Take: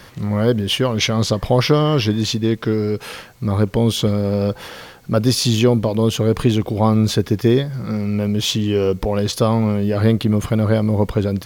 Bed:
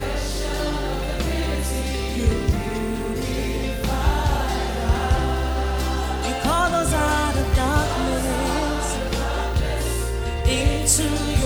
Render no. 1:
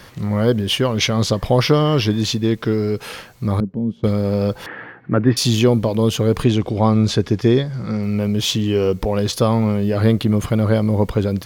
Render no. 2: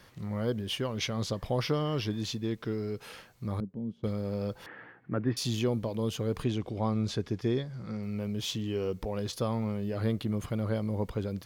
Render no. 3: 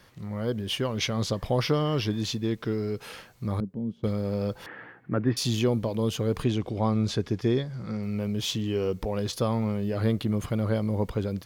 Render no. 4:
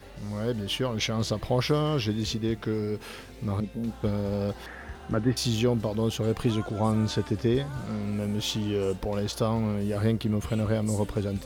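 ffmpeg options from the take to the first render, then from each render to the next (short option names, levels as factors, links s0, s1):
-filter_complex "[0:a]asettb=1/sr,asplit=3[s0][s1][s2];[s0]atrim=end=3.604[s3];[s1]atrim=start=3.6:end=4.04,asetpts=PTS-STARTPTS,afade=t=in:d=0.004:c=qsin,afade=t=out:st=0.436:d=0.004:c=qsin,bandpass=f=200:t=q:w=2.5[s4];[s2]atrim=start=4.036[s5];[s3][s4]acrossfade=d=0.004:c1=hsin:c2=qsin[s6];[s6][s5]acrossfade=d=0.004:c1=qsin:c2=hsin,asettb=1/sr,asplit=3[s7][s8][s9];[s7]atrim=end=4.664[s10];[s8]atrim=start=4.66:end=5.37,asetpts=PTS-STARTPTS,afade=t=in:d=0.004:c=qsin,afade=t=out:st=0.706:d=0.004:c=qsin,highpass=120,equalizer=f=120:t=q:w=4:g=4,equalizer=f=310:t=q:w=4:g=7,equalizer=f=560:t=q:w=4:g=-4,equalizer=f=1800:t=q:w=4:g=10,lowpass=f=2200:w=0.5412,lowpass=f=2200:w=1.3066[s11];[s9]atrim=start=5.366[s12];[s10][s11]acrossfade=d=0.004:c1=hsin:c2=qsin[s13];[s13][s12]acrossfade=d=0.004:c1=qsin:c2=hsin,asettb=1/sr,asplit=3[s14][s15][s16];[s14]atrim=end=6.444[s17];[s15]atrim=start=6.44:end=8.03,asetpts=PTS-STARTPTS,afade=t=in:d=0.004:c=qsin,afade=t=out:st=1.586:d=0.004:c=qsin,lowpass=7800[s18];[s16]atrim=start=8.026[s19];[s17][s18]acrossfade=d=0.004:c1=hsin:c2=qsin[s20];[s20][s19]acrossfade=d=0.004:c1=qsin:c2=hsin"
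-af "volume=0.188"
-af "dynaudnorm=f=380:g=3:m=1.68"
-filter_complex "[1:a]volume=0.0794[s0];[0:a][s0]amix=inputs=2:normalize=0"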